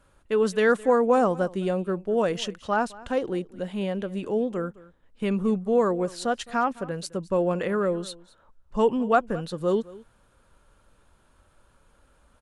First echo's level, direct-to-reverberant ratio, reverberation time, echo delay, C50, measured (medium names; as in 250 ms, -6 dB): -20.5 dB, no reverb, no reverb, 213 ms, no reverb